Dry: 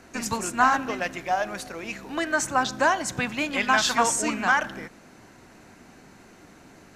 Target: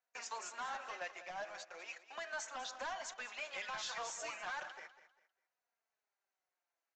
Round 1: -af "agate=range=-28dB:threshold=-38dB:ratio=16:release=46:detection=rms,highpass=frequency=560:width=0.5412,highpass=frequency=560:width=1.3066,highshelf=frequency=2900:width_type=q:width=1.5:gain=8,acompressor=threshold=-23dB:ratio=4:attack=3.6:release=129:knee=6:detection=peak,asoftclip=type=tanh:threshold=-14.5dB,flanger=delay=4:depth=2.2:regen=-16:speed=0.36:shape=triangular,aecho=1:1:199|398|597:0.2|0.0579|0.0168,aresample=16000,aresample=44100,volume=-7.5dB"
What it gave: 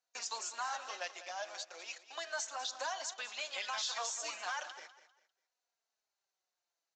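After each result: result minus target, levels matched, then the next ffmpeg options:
soft clipping: distortion −15 dB; 4,000 Hz band +3.0 dB
-af "agate=range=-28dB:threshold=-38dB:ratio=16:release=46:detection=rms,highpass=frequency=560:width=0.5412,highpass=frequency=560:width=1.3066,highshelf=frequency=2900:width_type=q:width=1.5:gain=8,acompressor=threshold=-23dB:ratio=4:attack=3.6:release=129:knee=6:detection=peak,asoftclip=type=tanh:threshold=-26.5dB,flanger=delay=4:depth=2.2:regen=-16:speed=0.36:shape=triangular,aecho=1:1:199|398|597:0.2|0.0579|0.0168,aresample=16000,aresample=44100,volume=-7.5dB"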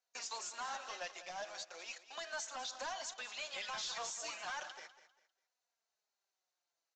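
4,000 Hz band +3.5 dB
-af "agate=range=-28dB:threshold=-38dB:ratio=16:release=46:detection=rms,highpass=frequency=560:width=0.5412,highpass=frequency=560:width=1.3066,acompressor=threshold=-23dB:ratio=4:attack=3.6:release=129:knee=6:detection=peak,asoftclip=type=tanh:threshold=-26.5dB,flanger=delay=4:depth=2.2:regen=-16:speed=0.36:shape=triangular,aecho=1:1:199|398|597:0.2|0.0579|0.0168,aresample=16000,aresample=44100,volume=-7.5dB"

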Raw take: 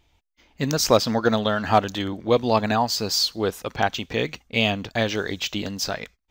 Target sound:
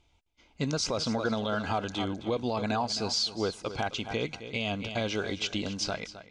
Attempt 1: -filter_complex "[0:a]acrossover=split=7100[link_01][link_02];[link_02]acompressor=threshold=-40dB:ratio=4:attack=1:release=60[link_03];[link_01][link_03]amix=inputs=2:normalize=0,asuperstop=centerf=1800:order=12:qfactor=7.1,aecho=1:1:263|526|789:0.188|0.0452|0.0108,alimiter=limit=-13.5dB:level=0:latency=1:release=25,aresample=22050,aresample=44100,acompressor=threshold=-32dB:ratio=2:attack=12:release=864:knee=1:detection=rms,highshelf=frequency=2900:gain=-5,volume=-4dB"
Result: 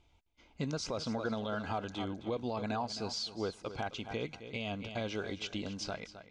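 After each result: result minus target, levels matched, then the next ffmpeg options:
downward compressor: peak gain reduction +6 dB; 8,000 Hz band −3.0 dB
-filter_complex "[0:a]acrossover=split=7100[link_01][link_02];[link_02]acompressor=threshold=-40dB:ratio=4:attack=1:release=60[link_03];[link_01][link_03]amix=inputs=2:normalize=0,asuperstop=centerf=1800:order=12:qfactor=7.1,aecho=1:1:263|526|789:0.188|0.0452|0.0108,alimiter=limit=-13.5dB:level=0:latency=1:release=25,aresample=22050,aresample=44100,acompressor=threshold=-20.5dB:ratio=2:attack=12:release=864:knee=1:detection=rms,highshelf=frequency=2900:gain=-5,volume=-4dB"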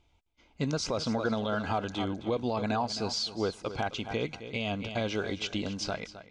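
8,000 Hz band −3.0 dB
-filter_complex "[0:a]acrossover=split=7100[link_01][link_02];[link_02]acompressor=threshold=-40dB:ratio=4:attack=1:release=60[link_03];[link_01][link_03]amix=inputs=2:normalize=0,asuperstop=centerf=1800:order=12:qfactor=7.1,aecho=1:1:263|526|789:0.188|0.0452|0.0108,alimiter=limit=-13.5dB:level=0:latency=1:release=25,aresample=22050,aresample=44100,acompressor=threshold=-20.5dB:ratio=2:attack=12:release=864:knee=1:detection=rms,volume=-4dB"

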